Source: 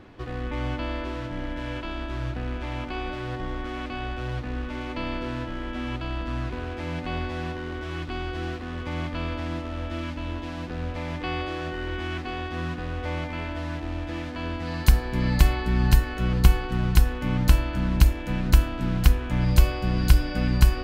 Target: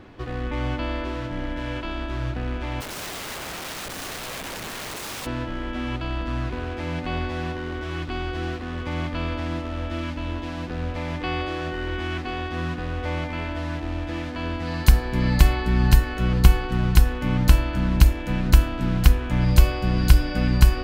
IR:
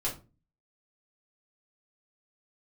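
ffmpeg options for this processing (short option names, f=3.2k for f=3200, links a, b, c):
-filter_complex "[0:a]asplit=3[a][b][c];[a]afade=t=out:st=2.8:d=0.02[d];[b]aeval=exprs='(mod(37.6*val(0)+1,2)-1)/37.6':c=same,afade=t=in:st=2.8:d=0.02,afade=t=out:st=5.25:d=0.02[e];[c]afade=t=in:st=5.25:d=0.02[f];[d][e][f]amix=inputs=3:normalize=0,volume=2.5dB"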